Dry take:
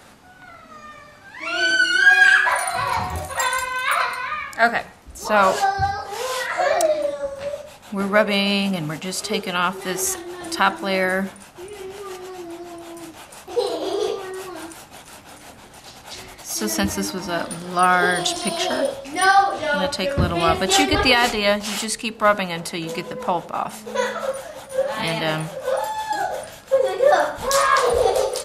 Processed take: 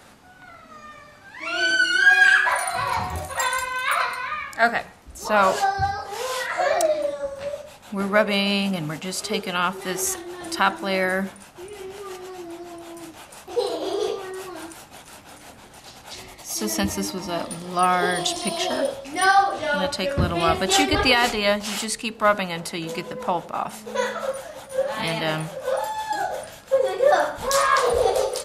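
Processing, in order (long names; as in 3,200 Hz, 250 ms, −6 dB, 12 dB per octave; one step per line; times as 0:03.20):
0:16.16–0:18.77: notch filter 1,500 Hz, Q 5
level −2 dB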